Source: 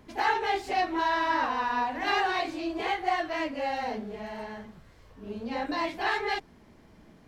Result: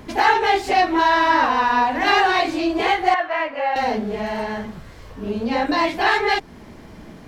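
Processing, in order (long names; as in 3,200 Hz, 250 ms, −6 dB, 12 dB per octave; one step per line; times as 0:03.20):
0:03.14–0:03.76: three-way crossover with the lows and the highs turned down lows −20 dB, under 530 Hz, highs −20 dB, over 2,700 Hz
in parallel at 0 dB: downward compressor, threshold −38 dBFS, peak gain reduction 16 dB
on the sum: level +8.5 dB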